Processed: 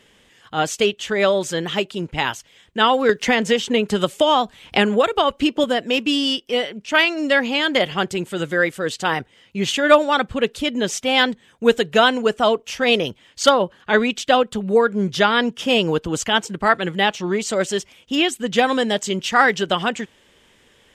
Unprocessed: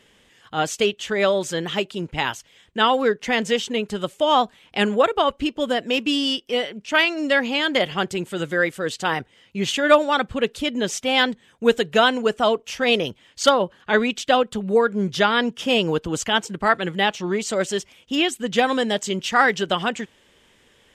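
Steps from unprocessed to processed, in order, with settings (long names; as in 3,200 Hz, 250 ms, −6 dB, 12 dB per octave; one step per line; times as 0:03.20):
0:03.09–0:05.64: multiband upward and downward compressor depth 100%
level +2 dB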